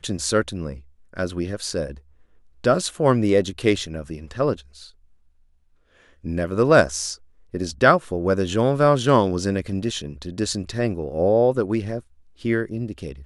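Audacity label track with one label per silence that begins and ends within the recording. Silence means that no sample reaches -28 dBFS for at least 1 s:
4.530000	6.250000	silence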